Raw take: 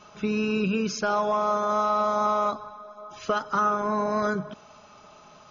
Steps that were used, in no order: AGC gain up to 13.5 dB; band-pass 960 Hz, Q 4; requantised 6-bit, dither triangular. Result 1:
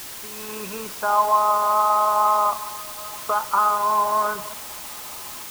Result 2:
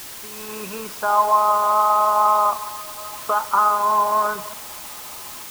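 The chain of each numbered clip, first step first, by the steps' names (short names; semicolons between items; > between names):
AGC > band-pass > requantised; band-pass > AGC > requantised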